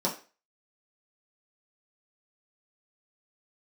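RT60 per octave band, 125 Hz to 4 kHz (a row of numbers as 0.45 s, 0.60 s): 0.20 s, 0.30 s, 0.35 s, 0.35 s, 0.35 s, 0.35 s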